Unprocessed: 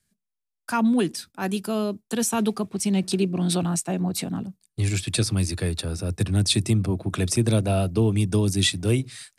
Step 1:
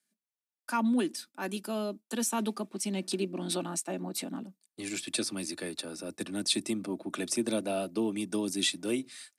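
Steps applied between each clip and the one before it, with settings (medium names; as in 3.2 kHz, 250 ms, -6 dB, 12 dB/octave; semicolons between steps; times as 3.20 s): high-pass 210 Hz 24 dB/octave; comb 3.4 ms, depth 35%; trim -6.5 dB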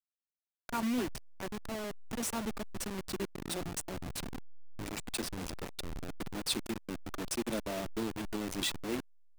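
send-on-delta sampling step -28 dBFS; trim -4.5 dB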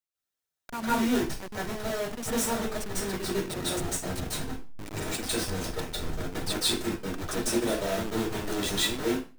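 reverberation RT60 0.35 s, pre-delay 145 ms, DRR -9 dB; trim -1 dB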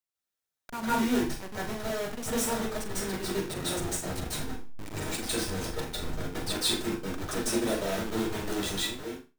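fade out at the end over 0.83 s; flutter echo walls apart 7 m, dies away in 0.26 s; trim -1.5 dB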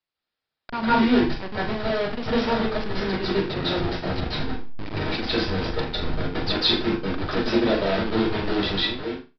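resampled via 11.025 kHz; trim +8 dB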